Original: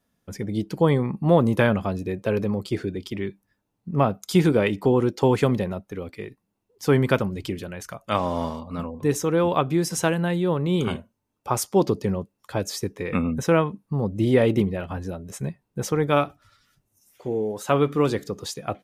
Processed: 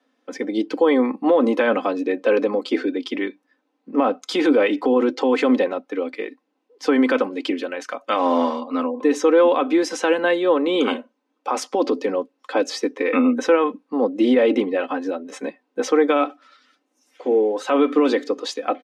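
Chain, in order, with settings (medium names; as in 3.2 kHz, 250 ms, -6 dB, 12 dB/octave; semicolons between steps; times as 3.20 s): Chebyshev high-pass 260 Hz, order 5; peak limiter -18 dBFS, peak gain reduction 10.5 dB; low-pass 3.8 kHz 12 dB/octave; comb 3.9 ms, depth 54%; trim +8.5 dB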